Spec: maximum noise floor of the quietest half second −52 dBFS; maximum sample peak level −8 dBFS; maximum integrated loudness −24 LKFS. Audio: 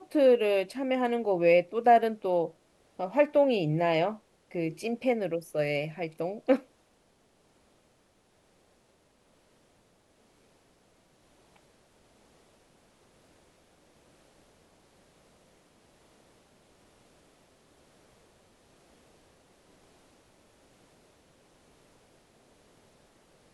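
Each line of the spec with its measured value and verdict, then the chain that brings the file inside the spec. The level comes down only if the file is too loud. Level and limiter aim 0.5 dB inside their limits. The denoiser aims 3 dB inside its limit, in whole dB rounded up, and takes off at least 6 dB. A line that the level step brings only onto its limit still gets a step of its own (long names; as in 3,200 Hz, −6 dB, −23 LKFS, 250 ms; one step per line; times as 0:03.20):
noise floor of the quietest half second −67 dBFS: in spec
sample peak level −10.0 dBFS: in spec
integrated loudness −27.0 LKFS: in spec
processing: no processing needed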